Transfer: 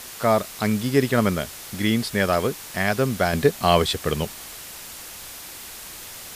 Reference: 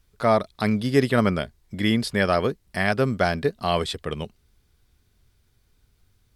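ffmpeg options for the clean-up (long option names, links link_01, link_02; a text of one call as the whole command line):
ffmpeg -i in.wav -af "afwtdn=0.014,asetnsamples=nb_out_samples=441:pad=0,asendcmd='3.33 volume volume -5.5dB',volume=0dB" out.wav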